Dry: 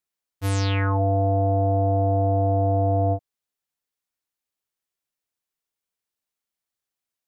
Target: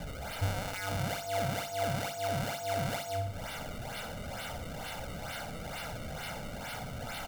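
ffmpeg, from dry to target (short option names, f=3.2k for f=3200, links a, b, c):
-filter_complex "[0:a]aeval=exprs='val(0)+0.5*0.0188*sgn(val(0))':c=same,acrusher=samples=30:mix=1:aa=0.000001:lfo=1:lforange=48:lforate=2.2,aecho=1:1:1.4:0.75,asplit=2[a][b];[b]aecho=0:1:60|120|180|240:0.316|0.108|0.0366|0.0124[c];[a][c]amix=inputs=2:normalize=0,acompressor=threshold=-27dB:ratio=4,bandreject=f=49.12:t=h:w=4,bandreject=f=98.24:t=h:w=4,bandreject=f=147.36:t=h:w=4,bandreject=f=196.48:t=h:w=4,bandreject=f=245.6:t=h:w=4,bandreject=f=294.72:t=h:w=4,bandreject=f=343.84:t=h:w=4,bandreject=f=392.96:t=h:w=4,bandreject=f=442.08:t=h:w=4,bandreject=f=491.2:t=h:w=4,bandreject=f=540.32:t=h:w=4,bandreject=f=589.44:t=h:w=4,bandreject=f=638.56:t=h:w=4,bandreject=f=687.68:t=h:w=4,bandreject=f=736.8:t=h:w=4,bandreject=f=785.92:t=h:w=4,bandreject=f=835.04:t=h:w=4,bandreject=f=884.16:t=h:w=4,bandreject=f=933.28:t=h:w=4,bandreject=f=982.4:t=h:w=4,bandreject=f=1.03152k:t=h:w=4,bandreject=f=1.08064k:t=h:w=4,bandreject=f=1.12976k:t=h:w=4,bandreject=f=1.17888k:t=h:w=4,bandreject=f=1.228k:t=h:w=4,bandreject=f=1.27712k:t=h:w=4,bandreject=f=1.32624k:t=h:w=4,bandreject=f=1.37536k:t=h:w=4,bandreject=f=1.42448k:t=h:w=4"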